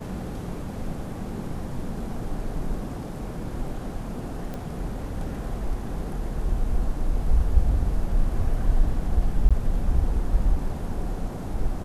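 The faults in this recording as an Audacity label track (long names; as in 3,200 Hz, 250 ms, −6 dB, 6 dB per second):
4.540000	4.540000	click −21 dBFS
9.490000	9.510000	drop-out 16 ms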